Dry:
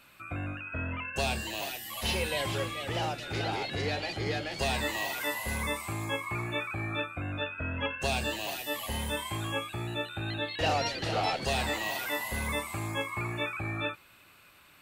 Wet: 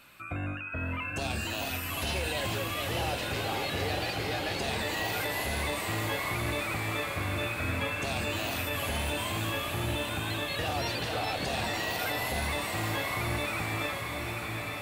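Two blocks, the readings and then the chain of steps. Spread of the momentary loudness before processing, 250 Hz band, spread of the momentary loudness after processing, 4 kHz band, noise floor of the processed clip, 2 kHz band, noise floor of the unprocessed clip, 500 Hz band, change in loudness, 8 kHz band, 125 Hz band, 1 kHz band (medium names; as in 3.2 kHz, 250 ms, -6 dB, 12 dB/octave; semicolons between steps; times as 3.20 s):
5 LU, +1.0 dB, 3 LU, +1.0 dB, -36 dBFS, +1.5 dB, -58 dBFS, +0.5 dB, +1.0 dB, +2.0 dB, +1.5 dB, +0.5 dB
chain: peak limiter -26.5 dBFS, peak gain reduction 10 dB; on a send: echo that smears into a reverb 922 ms, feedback 64%, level -3.5 dB; on the sum: trim +2 dB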